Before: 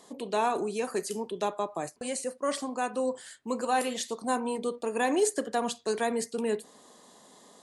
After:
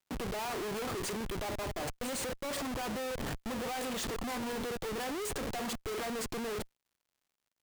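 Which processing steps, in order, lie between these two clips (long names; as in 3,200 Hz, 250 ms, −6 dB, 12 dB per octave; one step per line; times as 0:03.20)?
comparator with hysteresis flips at −41.5 dBFS
surface crackle 140 per second −59 dBFS
level −5 dB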